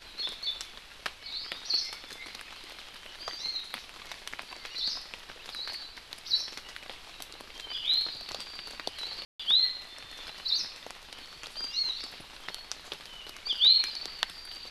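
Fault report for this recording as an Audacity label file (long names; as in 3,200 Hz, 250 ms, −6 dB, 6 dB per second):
9.250000	9.390000	drop-out 145 ms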